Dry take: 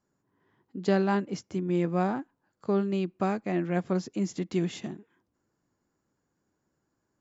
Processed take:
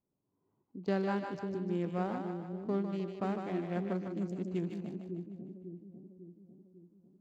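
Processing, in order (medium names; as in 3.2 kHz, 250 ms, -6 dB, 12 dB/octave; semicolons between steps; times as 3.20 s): local Wiener filter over 25 samples; two-band feedback delay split 440 Hz, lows 549 ms, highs 152 ms, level -5.5 dB; trim -7.5 dB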